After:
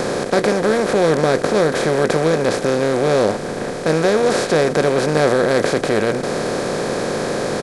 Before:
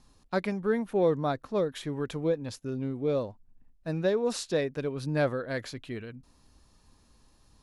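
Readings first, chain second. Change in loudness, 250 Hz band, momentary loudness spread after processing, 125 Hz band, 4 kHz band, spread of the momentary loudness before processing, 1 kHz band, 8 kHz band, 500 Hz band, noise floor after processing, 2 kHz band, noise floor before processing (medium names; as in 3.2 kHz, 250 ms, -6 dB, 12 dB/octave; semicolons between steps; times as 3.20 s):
+13.0 dB, +12.5 dB, 6 LU, +11.0 dB, +16.5 dB, 13 LU, +17.0 dB, +17.5 dB, +14.5 dB, -25 dBFS, +17.5 dB, -63 dBFS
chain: spectral levelling over time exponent 0.2; doubling 19 ms -13 dB; trim +5 dB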